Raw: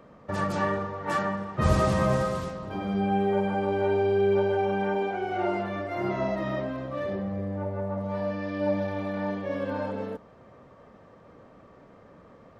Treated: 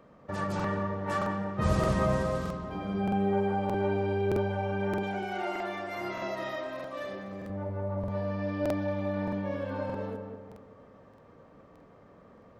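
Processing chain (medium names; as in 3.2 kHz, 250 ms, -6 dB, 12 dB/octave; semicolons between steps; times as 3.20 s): 5.03–7.50 s: tilt EQ +3.5 dB/octave; filtered feedback delay 193 ms, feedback 50%, low-pass 1.3 kHz, level -4 dB; crackling interface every 0.62 s, samples 2048, repeat, from 0.55 s; trim -4.5 dB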